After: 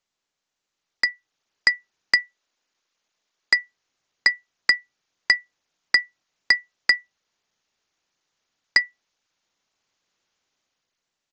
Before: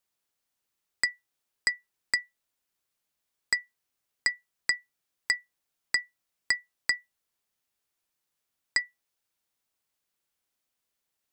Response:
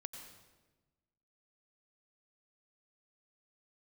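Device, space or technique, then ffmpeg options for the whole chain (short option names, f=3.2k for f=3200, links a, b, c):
Bluetooth headset: -filter_complex "[0:a]asettb=1/sr,asplit=3[a][b][c];[a]atrim=end=2.184[d];[b]atrim=start=2.18:end=3.58,asetpts=PTS-STARTPTS,afade=t=in:d=0.004:c=qsin,afade=t=out:st=1.396:d=0.004:c=qsin,highpass=210[e];[c]atrim=start=3.576[f];[d][e]acrossfade=d=0.004:c1=hsin:c2=qsin[g];[g][f]acrossfade=d=0.004:c1=qsin:c2=hsin,highpass=f=100:p=1,dynaudnorm=f=320:g=7:m=10dB,aresample=16000,aresample=44100,volume=2dB" -ar 16000 -c:a sbc -b:a 64k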